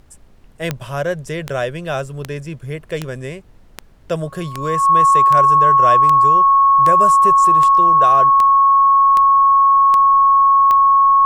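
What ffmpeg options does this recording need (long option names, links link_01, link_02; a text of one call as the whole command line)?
ffmpeg -i in.wav -af "adeclick=threshold=4,bandreject=frequency=1100:width=30,agate=range=-21dB:threshold=-35dB" out.wav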